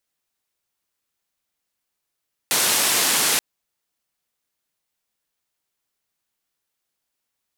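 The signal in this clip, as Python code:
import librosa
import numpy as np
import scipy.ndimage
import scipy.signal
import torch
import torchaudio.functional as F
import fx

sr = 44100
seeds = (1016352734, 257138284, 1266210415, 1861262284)

y = fx.band_noise(sr, seeds[0], length_s=0.88, low_hz=190.0, high_hz=12000.0, level_db=-19.5)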